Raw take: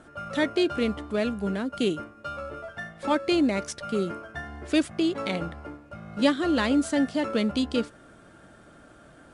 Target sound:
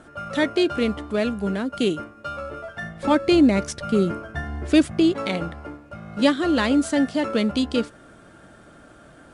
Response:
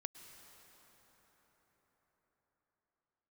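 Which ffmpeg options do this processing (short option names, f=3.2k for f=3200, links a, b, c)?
-filter_complex "[0:a]asettb=1/sr,asplit=3[a][b][c];[a]atrim=end=2.824[d];[b]atrim=start=2.82:end=5.12,asetpts=PTS-STARTPTS,afade=t=in:d=0.004:c=qsin,afade=t=out:st=2.296:d=0.004:c=qsin,lowshelf=f=250:g=9[e];[c]atrim=start=5.116[f];[d][e]acrossfade=d=0.004:c1=hsin:c2=qsin[g];[g][f]acrossfade=d=0.004:c1=qsin:c2=hsin,volume=3.5dB"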